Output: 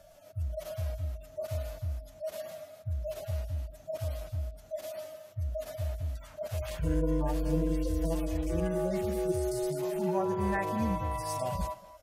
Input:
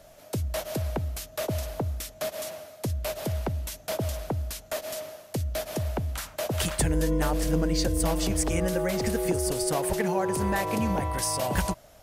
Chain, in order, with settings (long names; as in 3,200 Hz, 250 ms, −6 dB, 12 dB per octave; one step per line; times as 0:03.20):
harmonic-percussive split with one part muted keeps harmonic
far-end echo of a speakerphone 230 ms, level −15 dB
level −3 dB